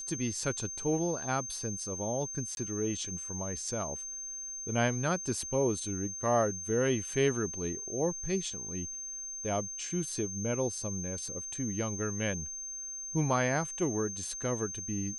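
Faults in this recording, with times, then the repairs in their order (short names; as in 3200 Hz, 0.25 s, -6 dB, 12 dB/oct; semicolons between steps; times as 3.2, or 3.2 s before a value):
tone 6300 Hz -38 dBFS
2.55–2.57 gap 21 ms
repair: notch 6300 Hz, Q 30; interpolate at 2.55, 21 ms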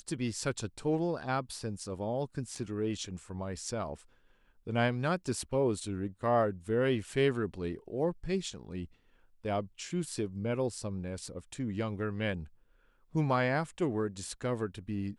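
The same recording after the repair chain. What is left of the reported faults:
none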